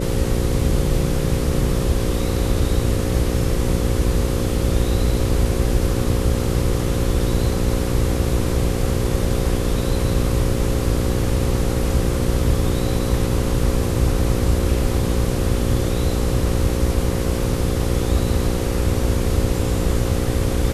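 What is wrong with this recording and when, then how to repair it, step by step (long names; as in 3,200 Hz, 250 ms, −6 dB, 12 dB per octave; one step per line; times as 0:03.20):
mains buzz 60 Hz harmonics 9 −24 dBFS
0:00.61: drop-out 2.5 ms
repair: hum removal 60 Hz, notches 9
repair the gap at 0:00.61, 2.5 ms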